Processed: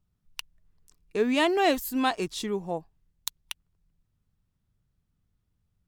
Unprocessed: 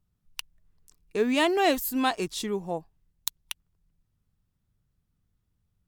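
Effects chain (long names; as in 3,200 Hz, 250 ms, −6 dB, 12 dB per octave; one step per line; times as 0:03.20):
high-shelf EQ 8,400 Hz −5.5 dB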